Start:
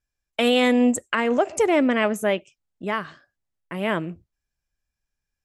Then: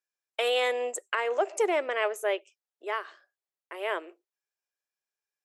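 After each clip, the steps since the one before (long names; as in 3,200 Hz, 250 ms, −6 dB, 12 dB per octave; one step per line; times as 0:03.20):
elliptic high-pass filter 380 Hz, stop band 50 dB
level −5 dB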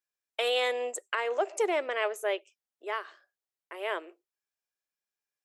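dynamic equaliser 4,000 Hz, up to +4 dB, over −47 dBFS, Q 2.2
level −2 dB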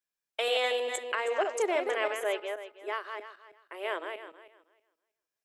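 feedback delay that plays each chunk backwards 160 ms, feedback 41%, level −5.5 dB
level −1 dB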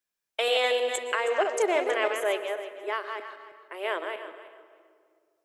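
convolution reverb RT60 2.1 s, pre-delay 109 ms, DRR 12.5 dB
level +3.5 dB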